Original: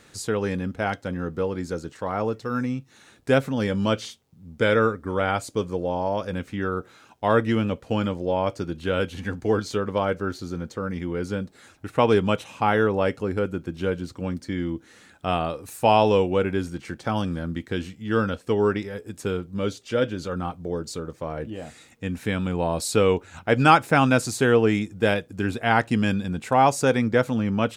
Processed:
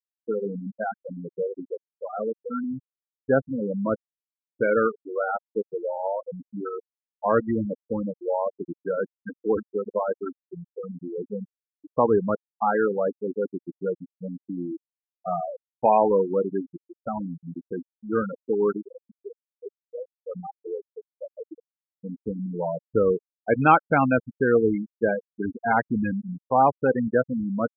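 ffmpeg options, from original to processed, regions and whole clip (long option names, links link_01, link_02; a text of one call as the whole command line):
ffmpeg -i in.wav -filter_complex "[0:a]asettb=1/sr,asplit=3[link_01][link_02][link_03];[link_01]atrim=end=19.134[link_04];[link_02]atrim=start=19.13:end=20.21,asetpts=PTS-STARTPTS,afade=type=in:duration=0.004:curve=qsin,afade=type=out:start_time=1.076:duration=0.004:curve=qsin,equalizer=frequency=400:width=4.2:gain=4,asplit=2[link_05][link_06];[link_06]adelay=27,volume=-11dB[link_07];[link_05][link_07]amix=inputs=2:normalize=0,atrim=end_sample=47628,acompressor=threshold=-37dB:ratio=2:attack=3.2:release=140:knee=1:detection=peak[link_08];[link_03]atrim=start=20.206[link_09];[link_04][link_08]acrossfade=duration=0.004:curve1=hsin:curve2=qsin[link_10];[link_10][link_09]acrossfade=duration=0.004:curve1=qsin:curve2=hsin,asettb=1/sr,asplit=3[link_11][link_12][link_13];[link_11]atrim=end=21.544[link_14];[link_12]atrim=start=21.54:end=23.29,asetpts=PTS-STARTPTS,afade=type=in:duration=0.004:curve=qsin,afade=type=out:start_time=1.746:duration=0.004:curve=qsin,aemphasis=mode=reproduction:type=75kf,aeval=exprs='val(0)+0.00794*(sin(2*PI*60*n/s)+sin(2*PI*2*60*n/s)/2+sin(2*PI*3*60*n/s)/3+sin(2*PI*4*60*n/s)/4+sin(2*PI*5*60*n/s)/5)':channel_layout=same[link_15];[link_13]atrim=start=23.286[link_16];[link_14][link_15]acrossfade=duration=0.004:curve1=hsin:curve2=qsin[link_17];[link_17][link_16]acrossfade=duration=0.004:curve1=qsin:curve2=hsin,highpass=frequency=170:poles=1,afftfilt=real='re*gte(hypot(re,im),0.2)':imag='im*gte(hypot(re,im),0.2)':win_size=1024:overlap=0.75,lowpass=2100" out.wav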